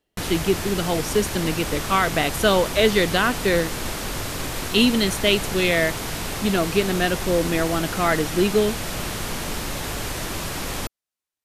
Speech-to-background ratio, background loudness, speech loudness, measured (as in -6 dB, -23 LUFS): 6.0 dB, -28.0 LUFS, -22.0 LUFS